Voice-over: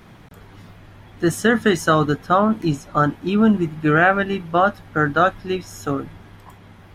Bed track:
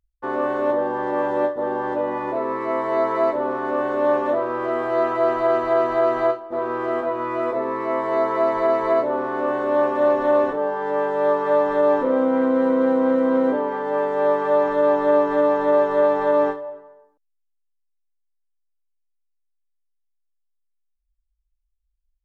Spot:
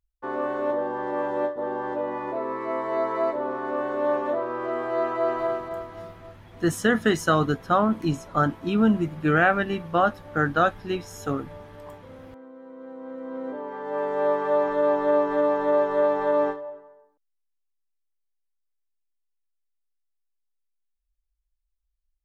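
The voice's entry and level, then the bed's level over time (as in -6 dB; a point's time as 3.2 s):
5.40 s, -4.5 dB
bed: 5.4 s -5 dB
6.19 s -26.5 dB
12.61 s -26.5 dB
14.11 s -4 dB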